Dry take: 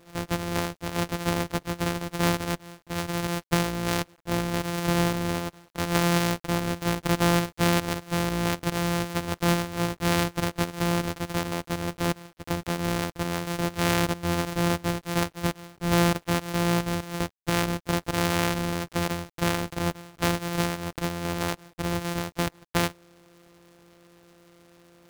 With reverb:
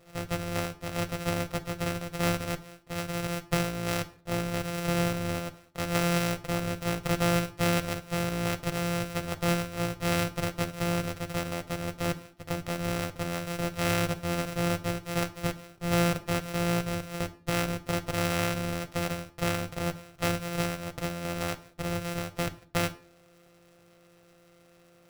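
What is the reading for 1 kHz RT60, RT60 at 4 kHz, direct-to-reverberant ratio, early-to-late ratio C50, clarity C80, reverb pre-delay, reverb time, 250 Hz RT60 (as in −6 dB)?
0.40 s, 0.35 s, 7.5 dB, 17.0 dB, 22.0 dB, 5 ms, 0.45 s, 0.55 s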